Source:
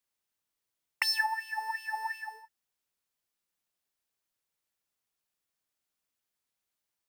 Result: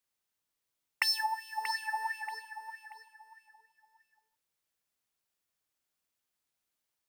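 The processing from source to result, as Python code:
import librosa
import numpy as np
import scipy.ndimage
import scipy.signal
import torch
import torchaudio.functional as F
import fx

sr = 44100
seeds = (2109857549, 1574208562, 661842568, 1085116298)

p1 = fx.band_shelf(x, sr, hz=1700.0, db=-8.5, octaves=1.3, at=(1.08, 1.64))
y = p1 + fx.echo_feedback(p1, sr, ms=633, feedback_pct=27, wet_db=-10.0, dry=0)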